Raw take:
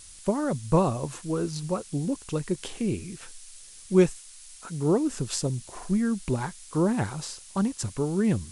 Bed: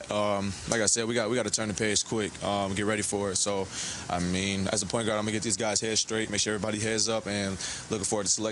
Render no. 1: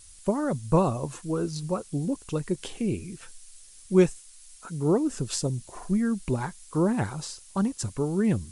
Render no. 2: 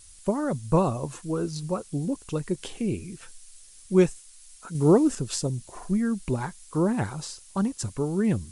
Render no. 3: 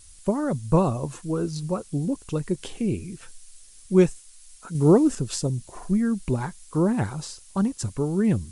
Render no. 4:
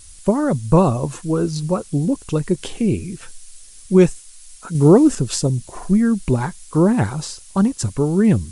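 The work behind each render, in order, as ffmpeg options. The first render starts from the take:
ffmpeg -i in.wav -af "afftdn=noise_reduction=6:noise_floor=-48" out.wav
ffmpeg -i in.wav -filter_complex "[0:a]asplit=3[link_01][link_02][link_03];[link_01]atrim=end=4.752[link_04];[link_02]atrim=start=4.748:end=5.152,asetpts=PTS-STARTPTS,volume=5dB[link_05];[link_03]atrim=start=5.148[link_06];[link_04][link_05]acrossfade=duration=0.004:curve1=hsin:curve2=hsin[link_07];[link_07][link_06]acrossfade=duration=0.004:curve1=hsin:curve2=hsin" out.wav
ffmpeg -i in.wav -af "lowshelf=frequency=340:gain=3.5" out.wav
ffmpeg -i in.wav -af "volume=7dB,alimiter=limit=-2dB:level=0:latency=1" out.wav

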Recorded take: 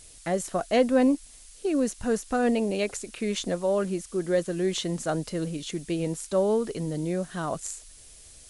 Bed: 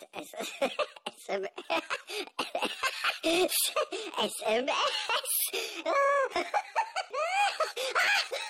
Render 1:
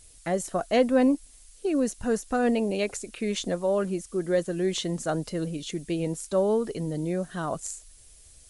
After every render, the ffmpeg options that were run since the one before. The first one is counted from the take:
ffmpeg -i in.wav -af "afftdn=noise_reduction=6:noise_floor=-50" out.wav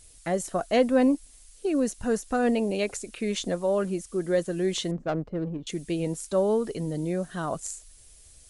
ffmpeg -i in.wav -filter_complex "[0:a]asettb=1/sr,asplit=3[link_01][link_02][link_03];[link_01]atrim=end=4.914[link_04];[link_02]atrim=start=4.91:end=5.67,asetpts=PTS-STARTPTS,afade=type=in:duration=0.004:curve=qsin,afade=type=out:start_time=0.756:duration=0.004:curve=qsin,adynamicsmooth=sensitivity=1.5:basefreq=690[link_05];[link_03]atrim=start=5.666[link_06];[link_04][link_05]acrossfade=duration=0.004:curve1=hsin:curve2=qsin[link_07];[link_07][link_06]acrossfade=duration=0.004:curve1=qsin:curve2=hsin" out.wav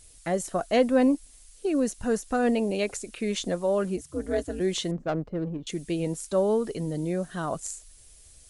ffmpeg -i in.wav -filter_complex "[0:a]asplit=3[link_01][link_02][link_03];[link_01]afade=type=out:start_time=3.96:duration=0.02[link_04];[link_02]aeval=exprs='val(0)*sin(2*PI*110*n/s)':channel_layout=same,afade=type=in:start_time=3.96:duration=0.02,afade=type=out:start_time=4.59:duration=0.02[link_05];[link_03]afade=type=in:start_time=4.59:duration=0.02[link_06];[link_04][link_05][link_06]amix=inputs=3:normalize=0" out.wav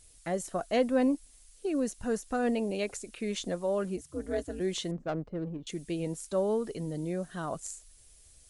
ffmpeg -i in.wav -af "volume=-5dB" out.wav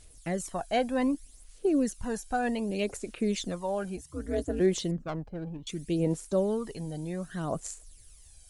ffmpeg -i in.wav -af "aphaser=in_gain=1:out_gain=1:delay=1.3:decay=0.57:speed=0.65:type=sinusoidal" out.wav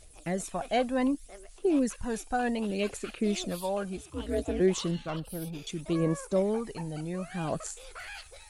ffmpeg -i in.wav -i bed.wav -filter_complex "[1:a]volume=-17dB[link_01];[0:a][link_01]amix=inputs=2:normalize=0" out.wav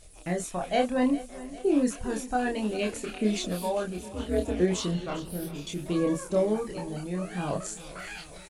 ffmpeg -i in.wav -filter_complex "[0:a]asplit=2[link_01][link_02];[link_02]adelay=28,volume=-2.5dB[link_03];[link_01][link_03]amix=inputs=2:normalize=0,aecho=1:1:403|806|1209|1612|2015|2418:0.141|0.0848|0.0509|0.0305|0.0183|0.011" out.wav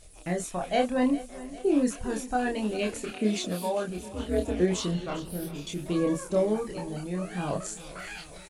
ffmpeg -i in.wav -filter_complex "[0:a]asettb=1/sr,asplit=3[link_01][link_02][link_03];[link_01]atrim=end=3.114[link_04];[link_02]atrim=start=3.11:end=3.89,asetpts=PTS-STARTPTS,afade=type=in:duration=0.004:curve=qsin,afade=type=out:start_time=0.776:duration=0.004:curve=qsin,highpass=85[link_05];[link_03]atrim=start=3.886[link_06];[link_04][link_05]acrossfade=duration=0.004:curve1=hsin:curve2=qsin[link_07];[link_07][link_06]acrossfade=duration=0.004:curve1=qsin:curve2=hsin" out.wav

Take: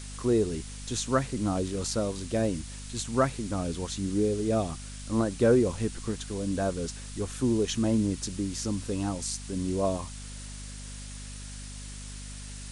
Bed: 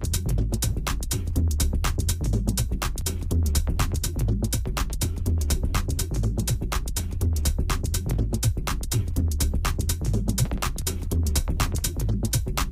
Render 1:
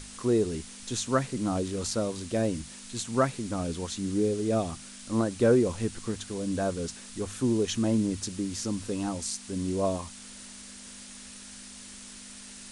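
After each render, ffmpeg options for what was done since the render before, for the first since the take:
ffmpeg -i in.wav -af "bandreject=frequency=50:width_type=h:width=6,bandreject=frequency=100:width_type=h:width=6,bandreject=frequency=150:width_type=h:width=6" out.wav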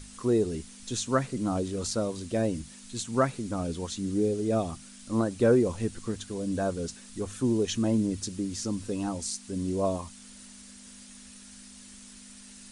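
ffmpeg -i in.wav -af "afftdn=noise_reduction=6:noise_floor=-46" out.wav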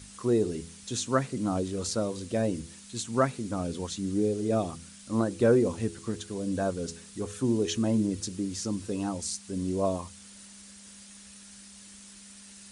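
ffmpeg -i in.wav -af "highpass=58,bandreject=frequency=83.38:width_type=h:width=4,bandreject=frequency=166.76:width_type=h:width=4,bandreject=frequency=250.14:width_type=h:width=4,bandreject=frequency=333.52:width_type=h:width=4,bandreject=frequency=416.9:width_type=h:width=4,bandreject=frequency=500.28:width_type=h:width=4" out.wav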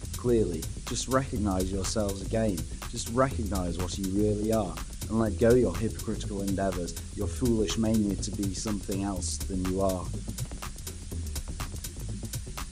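ffmpeg -i in.wav -i bed.wav -filter_complex "[1:a]volume=-11.5dB[link_01];[0:a][link_01]amix=inputs=2:normalize=0" out.wav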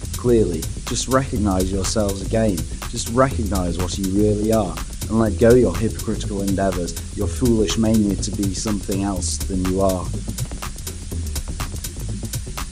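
ffmpeg -i in.wav -af "volume=9dB,alimiter=limit=-2dB:level=0:latency=1" out.wav

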